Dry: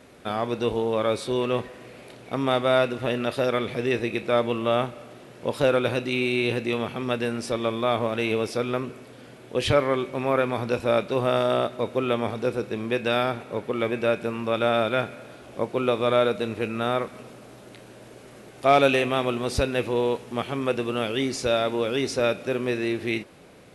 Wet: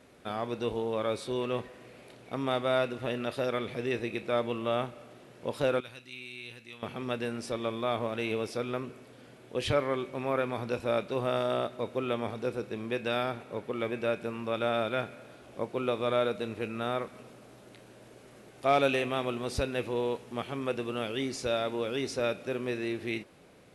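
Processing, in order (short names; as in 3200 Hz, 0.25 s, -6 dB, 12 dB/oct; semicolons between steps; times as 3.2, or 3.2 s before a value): 5.8–6.83 passive tone stack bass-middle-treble 5-5-5; gain -7 dB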